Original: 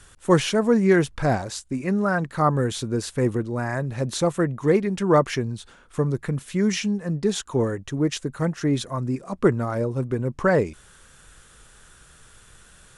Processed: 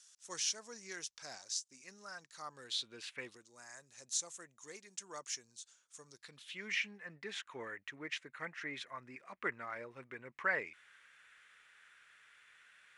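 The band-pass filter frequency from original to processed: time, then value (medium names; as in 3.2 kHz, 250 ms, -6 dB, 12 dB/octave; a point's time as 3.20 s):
band-pass filter, Q 3.4
2.49 s 5.8 kHz
3.17 s 2.2 kHz
3.40 s 6.6 kHz
6.03 s 6.6 kHz
6.77 s 2.1 kHz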